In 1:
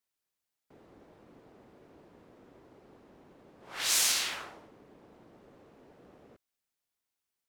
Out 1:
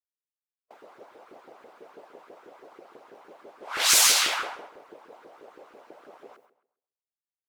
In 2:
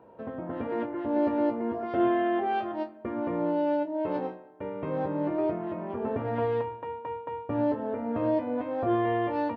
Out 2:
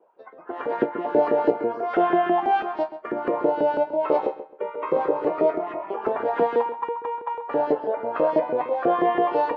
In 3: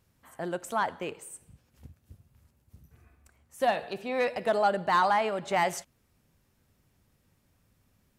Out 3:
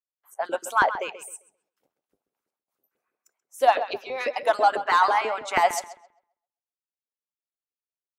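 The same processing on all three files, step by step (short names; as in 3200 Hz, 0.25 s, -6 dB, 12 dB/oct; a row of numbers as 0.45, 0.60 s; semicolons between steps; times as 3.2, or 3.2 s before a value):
octaver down 1 oct, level +2 dB; gate with hold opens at -53 dBFS; HPF 78 Hz; spectral noise reduction 19 dB; notch 1800 Hz, Q 19; harmonic-percussive split harmonic -11 dB; LFO high-pass saw up 6.1 Hz 370–1600 Hz; darkening echo 0.132 s, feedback 27%, low-pass 3300 Hz, level -12 dB; normalise peaks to -6 dBFS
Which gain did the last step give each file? +11.0, +14.5, +6.5 dB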